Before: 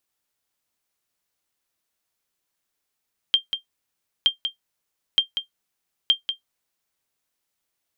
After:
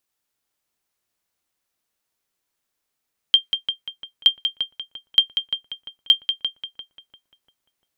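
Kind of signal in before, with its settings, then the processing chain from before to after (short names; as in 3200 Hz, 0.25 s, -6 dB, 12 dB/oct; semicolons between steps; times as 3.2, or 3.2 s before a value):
sonar ping 3180 Hz, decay 0.12 s, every 0.92 s, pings 4, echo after 0.19 s, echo -8.5 dB -8 dBFS
dynamic EQ 2500 Hz, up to +6 dB, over -34 dBFS, Q 0.8; darkening echo 0.346 s, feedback 46%, low-pass 1800 Hz, level -4 dB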